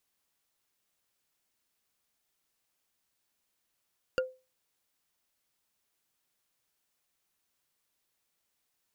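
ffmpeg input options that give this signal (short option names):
-f lavfi -i "aevalsrc='0.075*pow(10,-3*t/0.29)*sin(2*PI*515*t)+0.0473*pow(10,-3*t/0.086)*sin(2*PI*1419.9*t)+0.0299*pow(10,-3*t/0.038)*sin(2*PI*2783.1*t)+0.0188*pow(10,-3*t/0.021)*sin(2*PI*4600.5*t)+0.0119*pow(10,-3*t/0.013)*sin(2*PI*6870.1*t)':d=0.45:s=44100"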